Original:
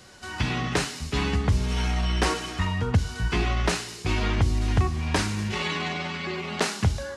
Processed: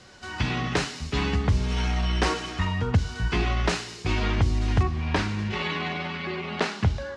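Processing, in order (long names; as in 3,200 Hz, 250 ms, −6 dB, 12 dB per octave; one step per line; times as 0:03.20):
low-pass filter 6,500 Hz 12 dB per octave, from 0:04.83 3,900 Hz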